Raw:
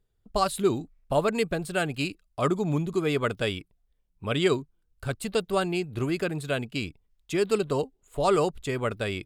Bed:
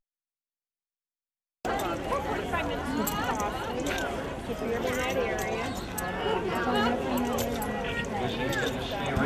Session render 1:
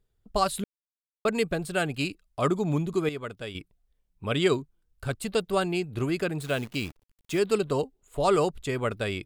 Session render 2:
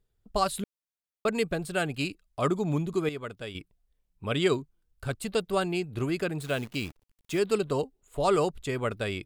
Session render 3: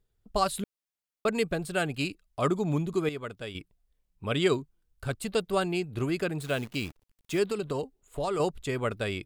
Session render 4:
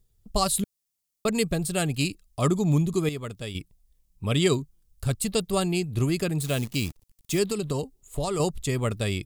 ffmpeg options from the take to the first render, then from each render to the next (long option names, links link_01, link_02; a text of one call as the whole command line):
ffmpeg -i in.wav -filter_complex "[0:a]asettb=1/sr,asplit=3[link_01][link_02][link_03];[link_01]atrim=end=6.404[link_04];[link_02]atrim=start=6.4:end=7.39,asetpts=PTS-STARTPTS,afade=type=in:duration=0.004:curve=qsin,afade=type=out:start_time=0.986:duration=0.004:curve=qsin,acrusher=bits=8:dc=4:mix=0:aa=0.000001[link_05];[link_03]atrim=start=7.386[link_06];[link_04][link_05]acrossfade=duration=0.004:curve1=hsin:curve2=qsin[link_07];[link_07][link_06]acrossfade=duration=0.004:curve1=qsin:curve2=hsin,asplit=5[link_08][link_09][link_10][link_11][link_12];[link_08]atrim=end=0.64,asetpts=PTS-STARTPTS,afade=type=out:start_time=0.636:duration=0.004:curve=hsin[link_13];[link_09]atrim=start=0.64:end=1.25,asetpts=PTS-STARTPTS,volume=0[link_14];[link_10]atrim=start=1.25:end=3.092,asetpts=PTS-STARTPTS,afade=type=in:duration=0.004:curve=hsin[link_15];[link_11]atrim=start=3.088:end=3.552,asetpts=PTS-STARTPTS,volume=-9.5dB[link_16];[link_12]atrim=start=3.548[link_17];[link_13][link_14][link_15]concat=n=3:v=0:a=1[link_18];[link_18][link_16]acrossfade=duration=0.004:curve1=hsin:curve2=hsin[link_19];[link_19][link_17]acrossfade=duration=0.004:curve1=hsin:curve2=hsin" out.wav
ffmpeg -i in.wav -af "volume=-1.5dB" out.wav
ffmpeg -i in.wav -filter_complex "[0:a]asettb=1/sr,asplit=3[link_01][link_02][link_03];[link_01]atrim=end=7.484[link_04];[link_02]atrim=start=7.48:end=8.4,asetpts=PTS-STARTPTS,afade=type=in:duration=0.004:curve=qsin,afade=type=out:start_time=0.916:duration=0.004:curve=qsin,acompressor=threshold=-26dB:ratio=6:attack=3.2:release=140:knee=1:detection=peak[link_05];[link_03]atrim=start=8.396[link_06];[link_04][link_05]acrossfade=duration=0.004:curve1=hsin:curve2=qsin[link_07];[link_07][link_06]acrossfade=duration=0.004:curve1=qsin:curve2=hsin" out.wav
ffmpeg -i in.wav -af "bass=frequency=250:gain=9,treble=frequency=4000:gain=12,bandreject=frequency=1500:width=8.8" out.wav